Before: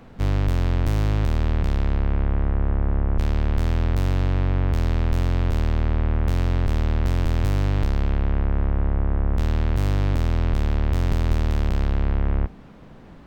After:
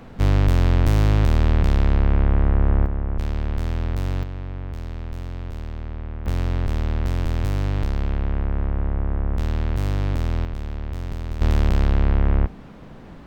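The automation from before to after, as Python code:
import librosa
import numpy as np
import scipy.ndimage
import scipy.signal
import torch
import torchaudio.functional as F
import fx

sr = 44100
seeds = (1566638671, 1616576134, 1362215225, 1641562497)

y = fx.gain(x, sr, db=fx.steps((0.0, 4.0), (2.86, -3.0), (4.23, -10.0), (6.26, -1.5), (10.45, -8.0), (11.41, 3.5)))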